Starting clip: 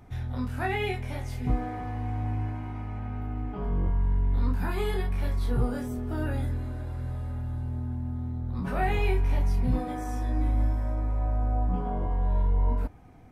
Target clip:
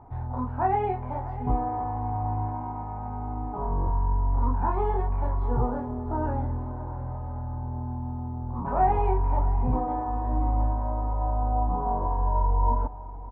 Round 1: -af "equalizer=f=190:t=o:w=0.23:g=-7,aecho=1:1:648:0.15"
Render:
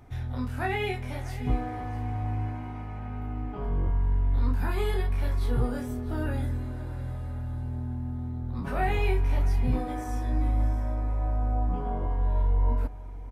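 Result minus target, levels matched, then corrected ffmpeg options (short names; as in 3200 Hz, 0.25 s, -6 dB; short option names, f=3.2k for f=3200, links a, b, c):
1000 Hz band -7.5 dB
-af "lowpass=f=930:t=q:w=5.1,equalizer=f=190:t=o:w=0.23:g=-7,aecho=1:1:648:0.15"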